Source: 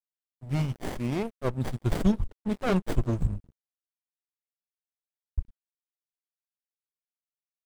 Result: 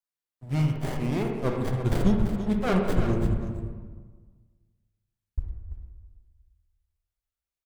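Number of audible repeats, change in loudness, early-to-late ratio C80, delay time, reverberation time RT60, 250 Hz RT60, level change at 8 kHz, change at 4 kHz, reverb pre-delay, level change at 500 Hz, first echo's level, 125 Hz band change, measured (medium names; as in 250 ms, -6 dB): 1, +3.0 dB, 4.0 dB, 337 ms, 1.4 s, 1.6 s, +0.5 dB, +1.0 dB, 28 ms, +3.5 dB, -9.5 dB, +3.0 dB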